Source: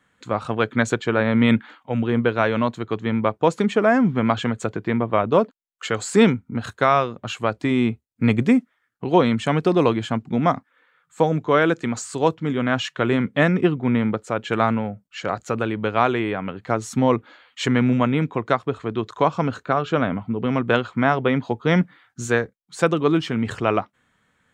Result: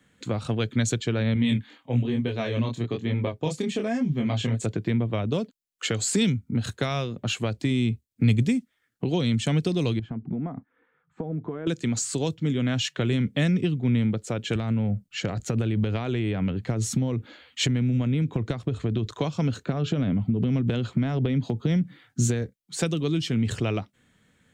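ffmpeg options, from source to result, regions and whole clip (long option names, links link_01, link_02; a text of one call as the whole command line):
ffmpeg -i in.wav -filter_complex "[0:a]asettb=1/sr,asplit=3[link_01][link_02][link_03];[link_01]atrim=end=1.344[link_04];[link_02]atrim=start=1.34:end=4.66,asetpts=PTS-STARTPTS,afade=type=in:duration=0.004:curve=qsin,afade=type=out:start_time=3.316:duration=0.004:curve=qsin,bandreject=frequency=1400:width=7.6,aecho=1:1:7.4:0.32,atrim=end_sample=146412,flanger=delay=20:depth=7.3:speed=1.1[link_05];[link_03]atrim=start=4.656[link_06];[link_04][link_05]acrossfade=duration=0.004:curve1=hsin:curve2=qsin[link_07];[link_07][link_06]acrossfade=duration=0.004:curve1=qsin:curve2=hsin,asettb=1/sr,asplit=3[link_08][link_09][link_10];[link_08]atrim=end=9.994[link_11];[link_09]atrim=start=9.99:end=11.67,asetpts=PTS-STARTPTS,afade=type=in:duration=0.004:curve=qsin,afade=type=out:start_time=1.676:duration=0.004:curve=qsin,bandreject=frequency=560:width=5.7,acompressor=threshold=-31dB:ratio=6:attack=3.2:release=140:knee=1:detection=peak,lowpass=1200[link_12];[link_10]atrim=start=11.666[link_13];[link_11][link_12]acrossfade=duration=0.004:curve1=hsin:curve2=qsin[link_14];[link_14][link_13]acrossfade=duration=0.004:curve1=qsin:curve2=hsin,asettb=1/sr,asplit=3[link_15][link_16][link_17];[link_15]atrim=end=14.554[link_18];[link_16]atrim=start=14.55:end=19.13,asetpts=PTS-STARTPTS,afade=type=in:duration=0.004:curve=qsin,afade=type=out:start_time=4.576:duration=0.004:curve=qsin,lowshelf=frequency=140:gain=10.5,acompressor=threshold=-20dB:ratio=10:attack=3.2:release=140:knee=1:detection=peak[link_19];[link_17]atrim=start=19.126[link_20];[link_18][link_19]acrossfade=duration=0.004:curve1=hsin:curve2=qsin[link_21];[link_21][link_20]acrossfade=duration=0.004:curve1=qsin:curve2=hsin,asettb=1/sr,asplit=3[link_22][link_23][link_24];[link_22]atrim=end=19.654[link_25];[link_23]atrim=start=19.65:end=22.42,asetpts=PTS-STARTPTS,afade=type=in:duration=0.004:curve=qsin,afade=type=out:start_time=2.766:duration=0.004:curve=qsin,equalizer=frequency=170:width=0.44:gain=7,acompressor=threshold=-18dB:ratio=6:attack=3.2:release=140:knee=1:detection=peak[link_26];[link_24]atrim=start=22.416[link_27];[link_25][link_26]acrossfade=duration=0.004:curve1=hsin:curve2=qsin[link_28];[link_28][link_27]acrossfade=duration=0.004:curve1=qsin:curve2=hsin,equalizer=frequency=1100:width=0.91:gain=-10.5,acrossover=split=130|3000[link_29][link_30][link_31];[link_30]acompressor=threshold=-32dB:ratio=6[link_32];[link_29][link_32][link_31]amix=inputs=3:normalize=0,equalizer=frequency=200:width=0.62:gain=2,volume=4.5dB" out.wav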